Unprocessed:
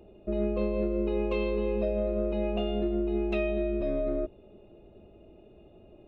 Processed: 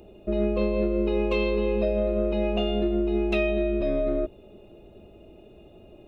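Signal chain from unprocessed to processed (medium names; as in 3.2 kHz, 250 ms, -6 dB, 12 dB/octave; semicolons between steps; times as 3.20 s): treble shelf 3.2 kHz +9 dB; trim +4 dB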